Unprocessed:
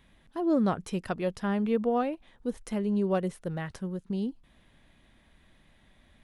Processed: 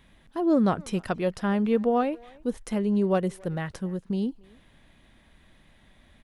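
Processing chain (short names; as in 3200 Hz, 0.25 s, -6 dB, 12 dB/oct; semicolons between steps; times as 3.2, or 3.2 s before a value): speakerphone echo 0.28 s, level -23 dB; gain +3.5 dB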